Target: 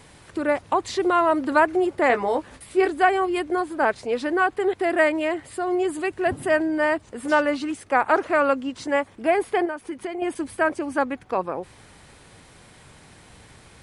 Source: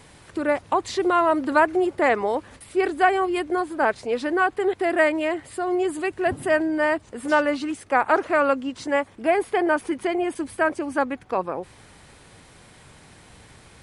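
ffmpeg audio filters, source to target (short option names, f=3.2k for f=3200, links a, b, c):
-filter_complex "[0:a]asettb=1/sr,asplit=3[a][b][c];[a]atrim=end=2.084[d];[b]atrim=start=2.08:end=2.88,asetpts=PTS-STARTPTS,afade=t=in:d=0.004:c=qsin,afade=t=out:st=0.796:d=0.004:c=qsin,asplit=2[e][f];[f]adelay=16,volume=-6dB[g];[e][g]amix=inputs=2:normalize=0,atrim=end_sample=35280[h];[c]atrim=start=2.876[i];[d][h]acrossfade=d=0.004:c1=hsin:c2=qsin[j];[j][i]acrossfade=d=0.004:c1=qsin:c2=hsin,asettb=1/sr,asplit=3[k][l][m];[k]atrim=end=9.654[n];[l]atrim=start=9.65:end=10.22,asetpts=PTS-STARTPTS,afade=t=in:d=0.004:c=qsin,afade=t=out:st=0.566:d=0.004:c=qsin,acompressor=threshold=-28dB:ratio=5[o];[m]atrim=start=10.216[p];[n][o]acrossfade=d=0.004:c1=hsin:c2=qsin[q];[q][p]acrossfade=d=0.004:c1=qsin:c2=hsin"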